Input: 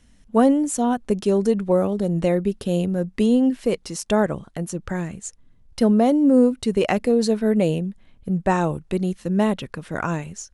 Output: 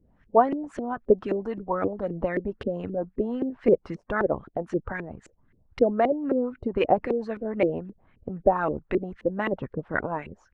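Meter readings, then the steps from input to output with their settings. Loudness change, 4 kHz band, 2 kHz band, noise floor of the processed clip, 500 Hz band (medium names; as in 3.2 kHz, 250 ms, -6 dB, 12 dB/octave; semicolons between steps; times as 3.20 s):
-6.0 dB, under -10 dB, -1.0 dB, -64 dBFS, -3.0 dB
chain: LFO low-pass saw up 3.8 Hz 360–2200 Hz; harmonic-percussive split harmonic -14 dB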